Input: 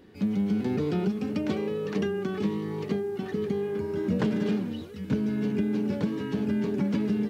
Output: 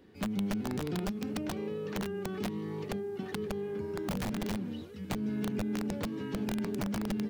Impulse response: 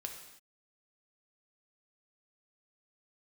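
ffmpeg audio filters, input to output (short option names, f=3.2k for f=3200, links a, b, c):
-filter_complex "[0:a]aeval=exprs='(mod(9.44*val(0)+1,2)-1)/9.44':c=same,acrossover=split=260[a][b];[b]acompressor=threshold=-30dB:ratio=6[c];[a][c]amix=inputs=2:normalize=0,volume=-5dB"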